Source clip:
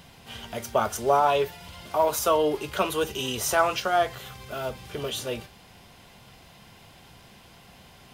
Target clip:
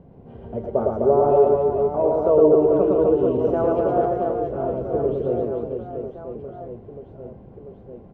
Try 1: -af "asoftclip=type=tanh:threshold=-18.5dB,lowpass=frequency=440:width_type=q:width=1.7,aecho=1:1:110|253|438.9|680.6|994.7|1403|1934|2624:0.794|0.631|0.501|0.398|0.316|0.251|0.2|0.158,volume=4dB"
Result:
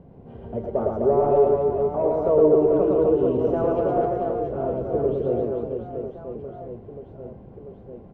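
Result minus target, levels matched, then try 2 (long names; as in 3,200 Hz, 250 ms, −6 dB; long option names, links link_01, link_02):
soft clipping: distortion +15 dB
-af "asoftclip=type=tanh:threshold=-8.5dB,lowpass=frequency=440:width_type=q:width=1.7,aecho=1:1:110|253|438.9|680.6|994.7|1403|1934|2624:0.794|0.631|0.501|0.398|0.316|0.251|0.2|0.158,volume=4dB"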